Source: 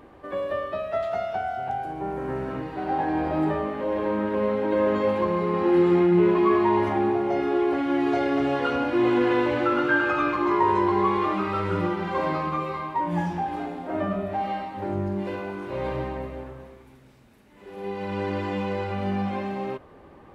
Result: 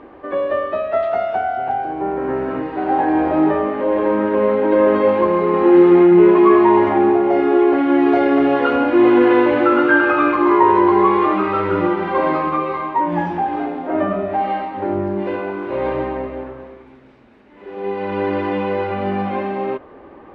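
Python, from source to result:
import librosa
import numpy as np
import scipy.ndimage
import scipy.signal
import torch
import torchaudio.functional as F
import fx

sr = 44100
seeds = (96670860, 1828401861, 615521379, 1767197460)

y = scipy.signal.sosfilt(scipy.signal.butter(2, 2700.0, 'lowpass', fs=sr, output='sos'), x)
y = fx.low_shelf_res(y, sr, hz=210.0, db=-6.5, q=1.5)
y = y * 10.0 ** (8.0 / 20.0)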